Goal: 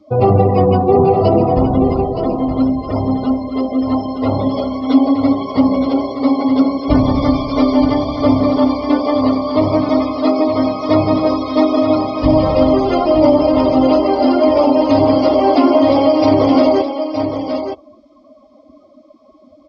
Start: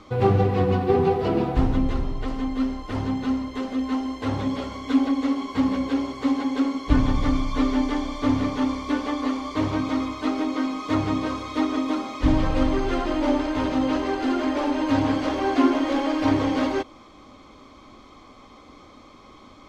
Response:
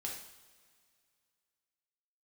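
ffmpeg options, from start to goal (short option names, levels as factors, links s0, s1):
-af "equalizer=f=630:t=o:w=0.33:g=11,equalizer=f=1600:t=o:w=0.33:g=-10,equalizer=f=5000:t=o:w=0.33:g=11,afftdn=nr=25:nf=-35,highpass=76,aecho=1:1:919:0.376,alimiter=level_in=3.16:limit=0.891:release=50:level=0:latency=1,volume=0.891"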